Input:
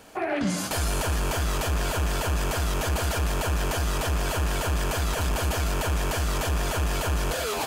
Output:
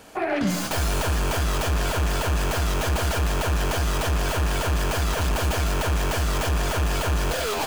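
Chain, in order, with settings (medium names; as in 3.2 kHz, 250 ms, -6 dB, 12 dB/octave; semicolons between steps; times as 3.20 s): tracing distortion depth 0.082 ms; trim +2.5 dB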